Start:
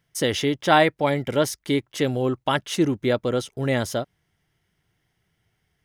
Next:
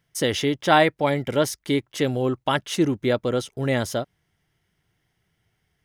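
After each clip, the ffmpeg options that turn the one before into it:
-af anull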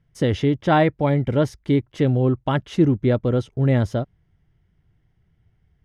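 -af "aemphasis=mode=reproduction:type=riaa,volume=0.794"

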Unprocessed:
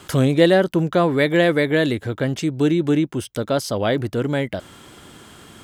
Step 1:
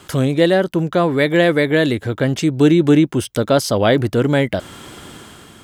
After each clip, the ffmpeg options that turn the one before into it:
-af "dynaudnorm=f=270:g=5:m=2.82"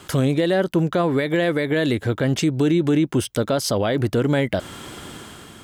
-af "alimiter=limit=0.282:level=0:latency=1:release=106"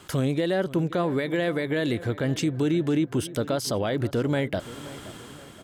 -filter_complex "[0:a]asplit=2[s0][s1];[s1]adelay=524,lowpass=f=2300:p=1,volume=0.15,asplit=2[s2][s3];[s3]adelay=524,lowpass=f=2300:p=1,volume=0.47,asplit=2[s4][s5];[s5]adelay=524,lowpass=f=2300:p=1,volume=0.47,asplit=2[s6][s7];[s7]adelay=524,lowpass=f=2300:p=1,volume=0.47[s8];[s0][s2][s4][s6][s8]amix=inputs=5:normalize=0,volume=0.531"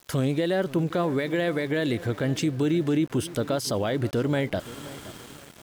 -af "aeval=exprs='val(0)*gte(abs(val(0)),0.0075)':c=same"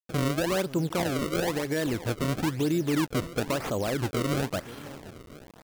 -af "acrusher=samples=30:mix=1:aa=0.000001:lfo=1:lforange=48:lforate=1,volume=0.75"

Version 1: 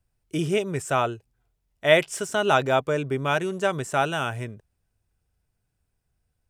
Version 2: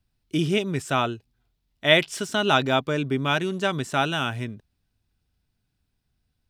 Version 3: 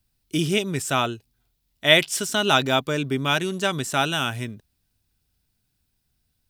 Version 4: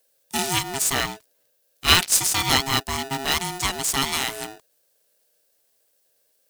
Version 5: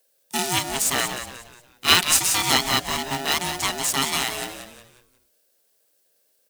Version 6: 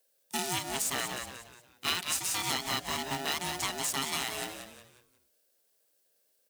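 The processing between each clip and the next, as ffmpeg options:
-af "equalizer=f=250:t=o:w=1:g=7,equalizer=f=500:t=o:w=1:g=-5,equalizer=f=4000:t=o:w=1:g=9,equalizer=f=8000:t=o:w=1:g=-5"
-af "crystalizer=i=2:c=0"
-af "bass=f=250:g=-2,treble=f=4000:g=13,aeval=exprs='val(0)*sgn(sin(2*PI*540*n/s))':c=same,volume=0.708"
-filter_complex "[0:a]highpass=140,asplit=2[s0][s1];[s1]asplit=4[s2][s3][s4][s5];[s2]adelay=180,afreqshift=-100,volume=0.355[s6];[s3]adelay=360,afreqshift=-200,volume=0.138[s7];[s4]adelay=540,afreqshift=-300,volume=0.0537[s8];[s5]adelay=720,afreqshift=-400,volume=0.0211[s9];[s6][s7][s8][s9]amix=inputs=4:normalize=0[s10];[s0][s10]amix=inputs=2:normalize=0"
-af "acompressor=threshold=0.0794:ratio=6,highpass=50,volume=0.501"

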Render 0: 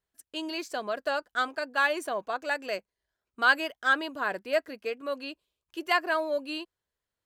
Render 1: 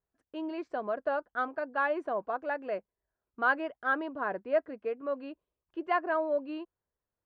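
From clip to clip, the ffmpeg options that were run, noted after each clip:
-af "lowpass=1200"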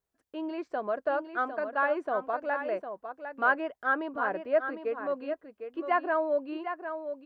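-filter_complex "[0:a]acrossover=split=2900[s0][s1];[s1]acompressor=threshold=0.00112:ratio=4:attack=1:release=60[s2];[s0][s2]amix=inputs=2:normalize=0,bass=f=250:g=-3,treble=f=4000:g=2,aecho=1:1:755:0.376,volume=1.26"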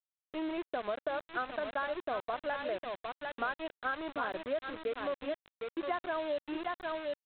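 -af "acompressor=threshold=0.0282:ratio=12,aresample=8000,aeval=exprs='val(0)*gte(abs(val(0)),0.0106)':c=same,aresample=44100"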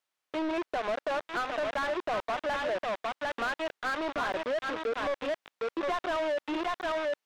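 -filter_complex "[0:a]asplit=2[s0][s1];[s1]highpass=f=720:p=1,volume=22.4,asoftclip=type=tanh:threshold=0.0944[s2];[s0][s2]amix=inputs=2:normalize=0,lowpass=f=2200:p=1,volume=0.501,volume=0.75"

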